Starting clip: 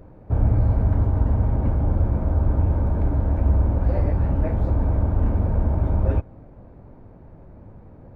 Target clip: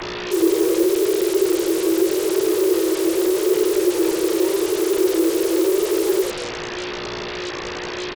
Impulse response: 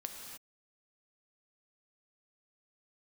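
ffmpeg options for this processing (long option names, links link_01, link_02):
-filter_complex "[0:a]equalizer=frequency=400:width=1.1:gain=-12.5,asplit=7[link_01][link_02][link_03][link_04][link_05][link_06][link_07];[link_02]adelay=91,afreqshift=58,volume=-7dB[link_08];[link_03]adelay=182,afreqshift=116,volume=-13.2dB[link_09];[link_04]adelay=273,afreqshift=174,volume=-19.4dB[link_10];[link_05]adelay=364,afreqshift=232,volume=-25.6dB[link_11];[link_06]adelay=455,afreqshift=290,volume=-31.8dB[link_12];[link_07]adelay=546,afreqshift=348,volume=-38dB[link_13];[link_01][link_08][link_09][link_10][link_11][link_12][link_13]amix=inputs=7:normalize=0,asettb=1/sr,asplit=3[link_14][link_15][link_16];[link_14]atrim=end=0.834[link_17];[link_15]atrim=start=0.83:end=2.19,asetpts=PTS-STARTPTS,afade=type=in:duration=0.004:curve=qsin,afade=type=out:start_time=1.356:duration=0.004:curve=qsin,acrossover=split=140[link_18][link_19];[link_19]acompressor=threshold=-29dB:ratio=6[link_20];[link_18][link_20]amix=inputs=2:normalize=0[link_21];[link_16]atrim=start=2.186[link_22];[link_17][link_21]acrossfade=duration=0.004:curve1=hsin:curve2=qsin[link_23];[link_23][link_22]acrossfade=duration=0.004:curve1=qsin:curve2=hsin,bandreject=frequency=60:width_type=h:width=6,bandreject=frequency=120:width_type=h:width=6,bandreject=frequency=180:width_type=h:width=6,acrossover=split=240|850[link_24][link_25][link_26];[link_25]alimiter=level_in=8dB:limit=-24dB:level=0:latency=1,volume=-8dB[link_27];[link_24][link_27][link_26]amix=inputs=3:normalize=0,aeval=exprs='val(0)+0.0282*(sin(2*PI*60*n/s)+sin(2*PI*2*60*n/s)/2+sin(2*PI*3*60*n/s)/3+sin(2*PI*4*60*n/s)/4+sin(2*PI*5*60*n/s)/5)':channel_layout=same,afreqshift=300,flanger=delay=4.6:depth=1.7:regen=65:speed=0.84:shape=sinusoidal,asplit=2[link_28][link_29];[link_29]aeval=exprs='0.0355*sin(PI/2*8.91*val(0)/0.0355)':channel_layout=same,volume=-3.5dB[link_30];[link_28][link_30]amix=inputs=2:normalize=0,volume=4.5dB"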